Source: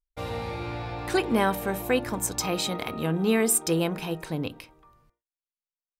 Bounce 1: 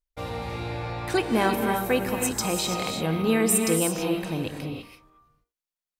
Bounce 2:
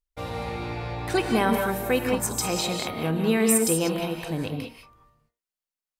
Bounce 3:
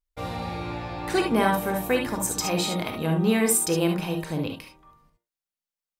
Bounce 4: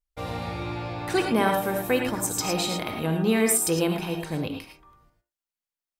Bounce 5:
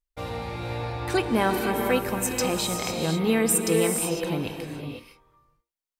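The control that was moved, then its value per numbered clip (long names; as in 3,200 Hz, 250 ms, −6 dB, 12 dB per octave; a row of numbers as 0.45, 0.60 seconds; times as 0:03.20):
reverb whose tail is shaped and stops, gate: 360, 220, 90, 130, 530 milliseconds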